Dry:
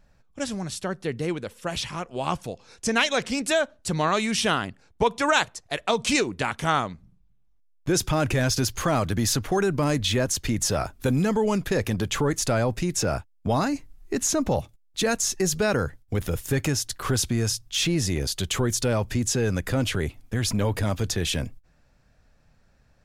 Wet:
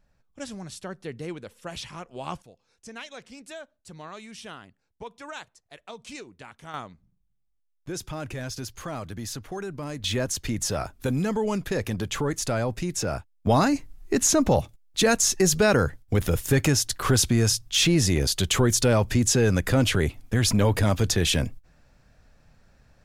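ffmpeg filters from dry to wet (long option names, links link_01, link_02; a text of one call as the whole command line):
ffmpeg -i in.wav -af "asetnsamples=nb_out_samples=441:pad=0,asendcmd='2.42 volume volume -18dB;6.74 volume volume -11dB;10.04 volume volume -3dB;13.47 volume volume 3.5dB',volume=-7dB" out.wav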